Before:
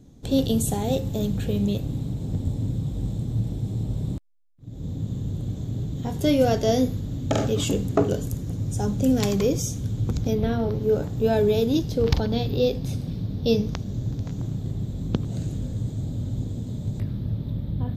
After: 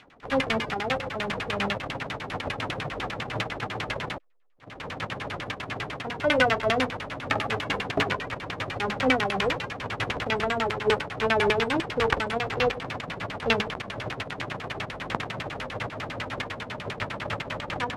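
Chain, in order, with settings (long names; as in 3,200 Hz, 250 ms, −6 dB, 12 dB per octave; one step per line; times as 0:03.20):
spectral envelope flattened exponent 0.1
auto-filter low-pass saw down 10 Hz 330–3,100 Hz
level −1 dB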